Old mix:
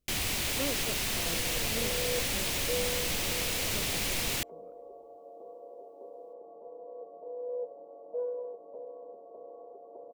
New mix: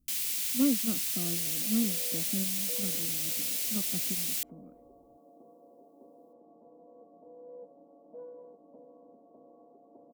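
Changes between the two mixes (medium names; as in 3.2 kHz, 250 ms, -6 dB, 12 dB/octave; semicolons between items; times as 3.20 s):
first sound: add differentiator; second sound -6.0 dB; master: add resonant low shelf 340 Hz +8.5 dB, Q 3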